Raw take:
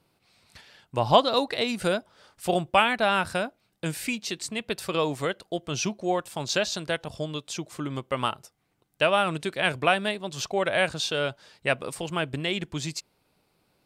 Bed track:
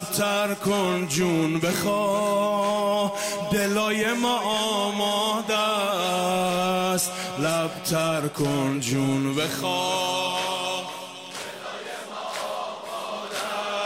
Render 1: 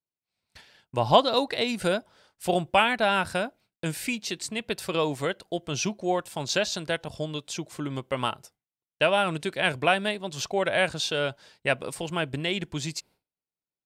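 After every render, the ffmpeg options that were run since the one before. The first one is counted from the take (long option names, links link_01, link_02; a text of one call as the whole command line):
ffmpeg -i in.wav -af "bandreject=frequency=1200:width=13,agate=range=-33dB:threshold=-49dB:ratio=3:detection=peak" out.wav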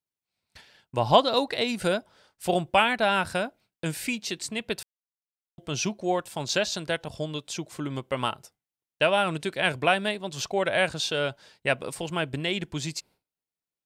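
ffmpeg -i in.wav -filter_complex "[0:a]asplit=3[link_01][link_02][link_03];[link_01]atrim=end=4.83,asetpts=PTS-STARTPTS,afade=type=out:start_time=4.826:duration=0.004:curve=hsin[link_04];[link_02]atrim=start=4.83:end=5.58,asetpts=PTS-STARTPTS,volume=0[link_05];[link_03]atrim=start=5.58,asetpts=PTS-STARTPTS,afade=type=in:duration=0.004:curve=hsin[link_06];[link_04][link_05][link_06]concat=n=3:v=0:a=1" out.wav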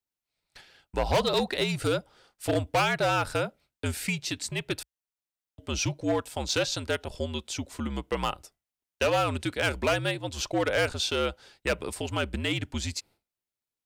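ffmpeg -i in.wav -af "volume=20dB,asoftclip=hard,volume=-20dB,afreqshift=-66" out.wav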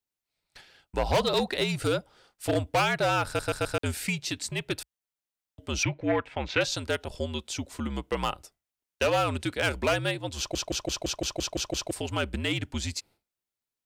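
ffmpeg -i in.wav -filter_complex "[0:a]asettb=1/sr,asplit=3[link_01][link_02][link_03];[link_01]atrim=end=5.834[link_04];[link_02]atrim=start=5.83:end=6.61,asetpts=PTS-STARTPTS,afade=type=in:duration=0.004:curve=qsin,afade=type=out:start_time=0.776:duration=0.004:curve=qsin,lowpass=frequency=2200:width_type=q:width=3[link_05];[link_03]atrim=start=6.606[link_06];[link_04][link_05]acrossfade=duration=0.004:curve1=hsin:curve2=qsin[link_07];[link_07][link_06]acrossfade=duration=0.004:curve1=qsin:curve2=hsin,asplit=14[link_08][link_09][link_10][link_11][link_12][link_13][link_14][link_15][link_16][link_17][link_18][link_19][link_20][link_21];[link_08]atrim=end=3.392[link_22];[link_09]atrim=start=3.258:end=3.392[link_23];[link_10]atrim=start=3.258:end=3.392[link_24];[link_11]atrim=start=3.258:end=3.392[link_25];[link_12]atrim=start=3.778:end=10.552[link_26];[link_13]atrim=start=10.378:end=10.552[link_27];[link_14]atrim=start=10.378:end=10.552[link_28];[link_15]atrim=start=10.378:end=10.552[link_29];[link_16]atrim=start=10.378:end=10.552[link_30];[link_17]atrim=start=10.378:end=10.552[link_31];[link_18]atrim=start=10.378:end=10.552[link_32];[link_19]atrim=start=10.378:end=10.552[link_33];[link_20]atrim=start=10.378:end=10.552[link_34];[link_21]atrim=start=11.908[link_35];[link_22][link_23]acrossfade=duration=0.004:curve1=hsin:curve2=hsin[link_36];[link_36][link_24]acrossfade=duration=0.004:curve1=hsin:curve2=hsin[link_37];[link_37][link_25]acrossfade=duration=0.004:curve1=hsin:curve2=hsin[link_38];[link_38][link_26]acrossfade=duration=0.004:curve1=hsin:curve2=hsin[link_39];[link_39][link_27]acrossfade=duration=0.004:curve1=hsin:curve2=hsin[link_40];[link_40][link_28]acrossfade=duration=0.004:curve1=hsin:curve2=hsin[link_41];[link_41][link_29]acrossfade=duration=0.004:curve1=hsin:curve2=hsin[link_42];[link_42][link_30]acrossfade=duration=0.004:curve1=hsin:curve2=hsin[link_43];[link_43][link_31]acrossfade=duration=0.004:curve1=hsin:curve2=hsin[link_44];[link_44][link_32]acrossfade=duration=0.004:curve1=hsin:curve2=hsin[link_45];[link_45][link_33]acrossfade=duration=0.004:curve1=hsin:curve2=hsin[link_46];[link_46][link_34]acrossfade=duration=0.004:curve1=hsin:curve2=hsin[link_47];[link_47][link_35]acrossfade=duration=0.004:curve1=hsin:curve2=hsin" out.wav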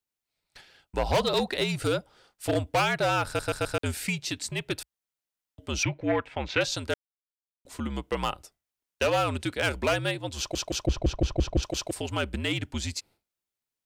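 ffmpeg -i in.wav -filter_complex "[0:a]asettb=1/sr,asplit=3[link_01][link_02][link_03];[link_01]atrim=end=10.864[link_04];[link_02]atrim=start=10.86:end=11.63,asetpts=PTS-STARTPTS,afade=type=in:duration=0.004:curve=qsin,afade=type=out:start_time=0.766:duration=0.004:curve=qsin,aemphasis=mode=reproduction:type=riaa[link_05];[link_03]atrim=start=11.626[link_06];[link_04][link_05]acrossfade=duration=0.004:curve1=hsin:curve2=qsin[link_07];[link_07][link_06]acrossfade=duration=0.004:curve1=qsin:curve2=hsin,asplit=3[link_08][link_09][link_10];[link_08]atrim=end=6.94,asetpts=PTS-STARTPTS,afade=type=out:start_time=6.936:duration=0.004:curve=hsin[link_11];[link_09]atrim=start=6.94:end=7.65,asetpts=PTS-STARTPTS,volume=0[link_12];[link_10]atrim=start=7.65,asetpts=PTS-STARTPTS,afade=type=in:duration=0.004:curve=hsin[link_13];[link_11][link_12][link_13]concat=n=3:v=0:a=1" out.wav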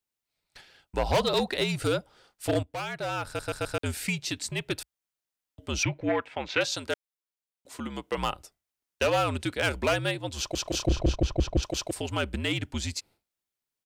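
ffmpeg -i in.wav -filter_complex "[0:a]asettb=1/sr,asplit=3[link_01][link_02][link_03];[link_01]atrim=end=6.094[link_04];[link_02]atrim=start=6.09:end=8.18,asetpts=PTS-STARTPTS,afade=type=in:duration=0.004:curve=qsin,afade=type=out:start_time=2.086:duration=0.004:curve=qsin,highpass=frequency=230:poles=1[link_05];[link_03]atrim=start=8.176[link_06];[link_04][link_05]acrossfade=duration=0.004:curve1=hsin:curve2=qsin[link_07];[link_07][link_06]acrossfade=duration=0.004:curve1=qsin:curve2=hsin,asplit=3[link_08][link_09][link_10];[link_08]afade=type=out:start_time=10.65:duration=0.02[link_11];[link_09]asplit=2[link_12][link_13];[link_13]adelay=32,volume=-4.5dB[link_14];[link_12][link_14]amix=inputs=2:normalize=0,afade=type=in:start_time=10.65:duration=0.02,afade=type=out:start_time=11.14:duration=0.02[link_15];[link_10]afade=type=in:start_time=11.14:duration=0.02[link_16];[link_11][link_15][link_16]amix=inputs=3:normalize=0,asplit=2[link_17][link_18];[link_17]atrim=end=2.63,asetpts=PTS-STARTPTS,afade=type=out:start_time=2.626:duration=0.004:curve=hsin:silence=0.223872[link_19];[link_18]atrim=start=2.63,asetpts=PTS-STARTPTS,afade=type=in:duration=1.47:silence=0.223872[link_20];[link_19][link_20]concat=n=2:v=0:a=1" out.wav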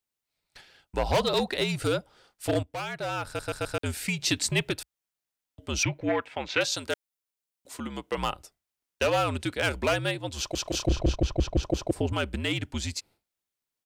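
ffmpeg -i in.wav -filter_complex "[0:a]asplit=3[link_01][link_02][link_03];[link_01]afade=type=out:start_time=4.19:duration=0.02[link_04];[link_02]acontrast=64,afade=type=in:start_time=4.19:duration=0.02,afade=type=out:start_time=4.69:duration=0.02[link_05];[link_03]afade=type=in:start_time=4.69:duration=0.02[link_06];[link_04][link_05][link_06]amix=inputs=3:normalize=0,asettb=1/sr,asplit=3[link_07][link_08][link_09];[link_07]atrim=end=5.764[link_10];[link_08]atrim=start=5.76:end=7.77,asetpts=PTS-STARTPTS,afade=type=in:duration=0.004:curve=qsin,afade=type=out:start_time=2.006:duration=0.004:curve=qsin,highshelf=frequency=5900:gain=5[link_11];[link_09]atrim=start=7.766[link_12];[link_10][link_11]acrossfade=duration=0.004:curve1=hsin:curve2=qsin[link_13];[link_13][link_12]acrossfade=duration=0.004:curve1=qsin:curve2=hsin,asettb=1/sr,asplit=3[link_14][link_15][link_16];[link_14]atrim=end=11.624[link_17];[link_15]atrim=start=11.62:end=12.13,asetpts=PTS-STARTPTS,afade=type=in:duration=0.004:curve=qsin,afade=type=out:start_time=0.506:duration=0.004:curve=qsin,tiltshelf=frequency=1100:gain=8[link_18];[link_16]atrim=start=12.126[link_19];[link_17][link_18]acrossfade=duration=0.004:curve1=hsin:curve2=qsin[link_20];[link_20][link_19]acrossfade=duration=0.004:curve1=qsin:curve2=hsin" out.wav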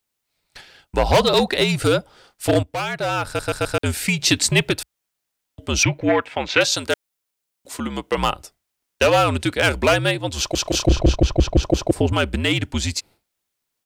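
ffmpeg -i in.wav -af "volume=9dB" out.wav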